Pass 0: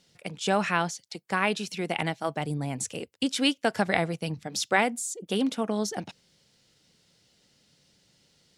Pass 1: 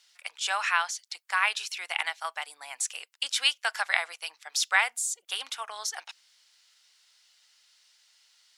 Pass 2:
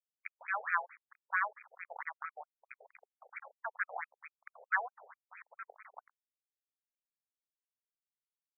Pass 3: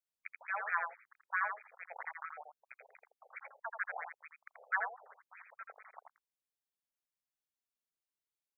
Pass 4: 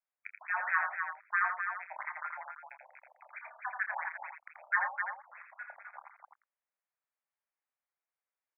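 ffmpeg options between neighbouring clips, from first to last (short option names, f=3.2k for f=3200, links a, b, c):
-af "highpass=f=1k:w=0.5412,highpass=f=1k:w=1.3066,volume=3dB"
-af "acrusher=bits=4:mix=0:aa=0.000001,afftfilt=real='re*between(b*sr/1024,570*pow(1800/570,0.5+0.5*sin(2*PI*4.5*pts/sr))/1.41,570*pow(1800/570,0.5+0.5*sin(2*PI*4.5*pts/sr))*1.41)':imag='im*between(b*sr/1024,570*pow(1800/570,0.5+0.5*sin(2*PI*4.5*pts/sr))/1.41,570*pow(1800/570,0.5+0.5*sin(2*PI*4.5*pts/sr))*1.41)':win_size=1024:overlap=0.75,volume=-4dB"
-af "aecho=1:1:83:0.531,volume=-2.5dB"
-af "aecho=1:1:29.15|256.6:0.316|0.501,highpass=f=430:t=q:w=0.5412,highpass=f=430:t=q:w=1.307,lowpass=f=2.2k:t=q:w=0.5176,lowpass=f=2.2k:t=q:w=0.7071,lowpass=f=2.2k:t=q:w=1.932,afreqshift=96,volume=4dB"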